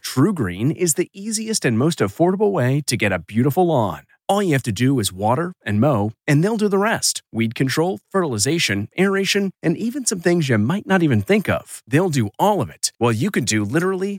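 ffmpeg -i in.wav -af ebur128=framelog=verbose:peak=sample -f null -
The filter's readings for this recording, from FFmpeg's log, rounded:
Integrated loudness:
  I:         -19.3 LUFS
  Threshold: -29.3 LUFS
Loudness range:
  LRA:         0.7 LU
  Threshold: -39.2 LUFS
  LRA low:   -19.6 LUFS
  LRA high:  -18.9 LUFS
Sample peak:
  Peak:       -3.5 dBFS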